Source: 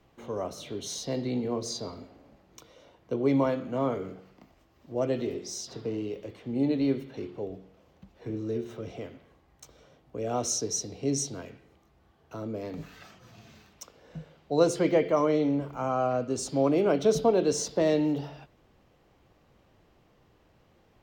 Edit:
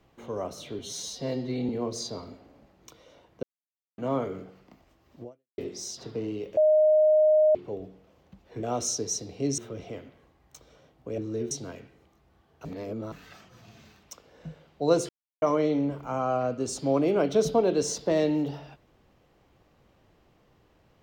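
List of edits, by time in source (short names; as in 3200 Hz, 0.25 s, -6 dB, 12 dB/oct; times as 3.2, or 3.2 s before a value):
0.79–1.39 stretch 1.5×
3.13–3.68 mute
4.93–5.28 fade out exponential
6.27–7.25 bleep 617 Hz -16.5 dBFS
8.33–8.66 swap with 10.26–11.21
12.35–12.82 reverse
14.79–15.12 mute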